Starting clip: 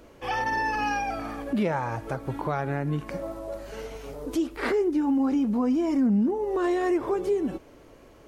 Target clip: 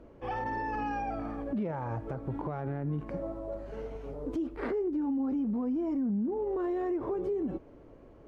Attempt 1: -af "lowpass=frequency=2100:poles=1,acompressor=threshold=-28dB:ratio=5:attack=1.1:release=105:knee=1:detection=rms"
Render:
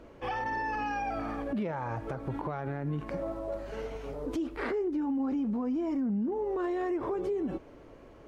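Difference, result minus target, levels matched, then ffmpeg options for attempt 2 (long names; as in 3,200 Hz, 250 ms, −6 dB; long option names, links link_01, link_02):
2,000 Hz band +4.5 dB
-af "lowpass=frequency=570:poles=1,acompressor=threshold=-28dB:ratio=5:attack=1.1:release=105:knee=1:detection=rms"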